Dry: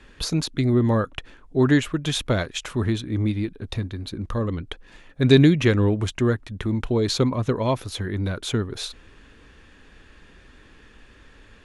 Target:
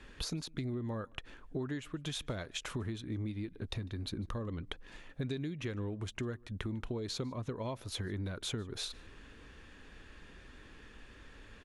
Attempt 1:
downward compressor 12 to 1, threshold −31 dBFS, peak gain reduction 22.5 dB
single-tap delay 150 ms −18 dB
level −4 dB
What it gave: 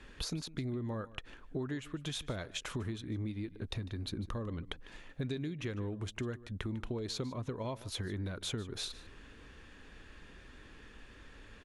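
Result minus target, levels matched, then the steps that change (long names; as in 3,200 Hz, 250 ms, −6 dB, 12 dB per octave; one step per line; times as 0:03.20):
echo-to-direct +8.5 dB
change: single-tap delay 150 ms −26.5 dB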